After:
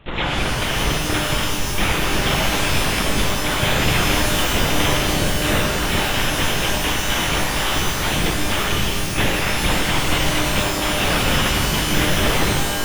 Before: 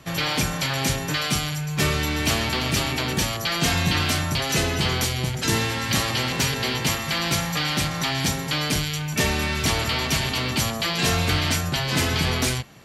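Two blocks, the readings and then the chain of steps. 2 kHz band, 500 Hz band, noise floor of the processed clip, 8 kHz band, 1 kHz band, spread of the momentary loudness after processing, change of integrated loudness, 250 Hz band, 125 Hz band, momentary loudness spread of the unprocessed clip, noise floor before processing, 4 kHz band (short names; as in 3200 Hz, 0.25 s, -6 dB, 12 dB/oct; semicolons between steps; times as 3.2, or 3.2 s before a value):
+4.5 dB, +5.5 dB, -22 dBFS, +2.5 dB, +5.5 dB, 3 LU, +3.5 dB, +3.5 dB, +1.5 dB, 3 LU, -29 dBFS, +3.0 dB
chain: added harmonics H 6 -9 dB, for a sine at -9 dBFS; LPC vocoder at 8 kHz whisper; shimmer reverb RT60 2.2 s, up +12 st, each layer -2 dB, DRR 3.5 dB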